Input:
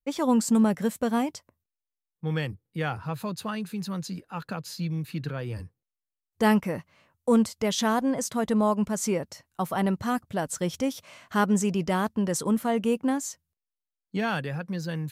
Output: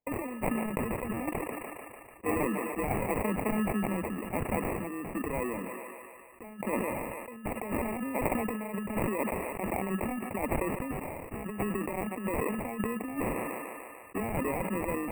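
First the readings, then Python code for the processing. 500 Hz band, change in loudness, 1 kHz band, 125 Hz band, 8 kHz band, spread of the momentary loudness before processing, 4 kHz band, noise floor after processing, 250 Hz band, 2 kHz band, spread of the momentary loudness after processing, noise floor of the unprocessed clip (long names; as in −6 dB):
−4.0 dB, −6.0 dB, −4.0 dB, −6.0 dB, −9.5 dB, 12 LU, below −15 dB, −49 dBFS, −7.0 dB, −3.0 dB, 9 LU, below −85 dBFS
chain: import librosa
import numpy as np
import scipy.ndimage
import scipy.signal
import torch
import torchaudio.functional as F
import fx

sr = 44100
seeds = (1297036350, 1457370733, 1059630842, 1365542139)

y = scipy.signal.sosfilt(scipy.signal.butter(16, 200.0, 'highpass', fs=sr, output='sos'), x)
y = fx.spec_box(y, sr, start_s=0.53, length_s=1.81, low_hz=960.0, high_hz=3800.0, gain_db=11)
y = fx.over_compress(y, sr, threshold_db=-31.0, ratio=-0.5)
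y = fx.sample_hold(y, sr, seeds[0], rate_hz=1500.0, jitter_pct=0)
y = fx.brickwall_bandstop(y, sr, low_hz=2900.0, high_hz=7800.0)
y = fx.echo_thinned(y, sr, ms=147, feedback_pct=65, hz=280.0, wet_db=-23)
y = fx.sustainer(y, sr, db_per_s=26.0)
y = F.gain(torch.from_numpy(y), -2.0).numpy()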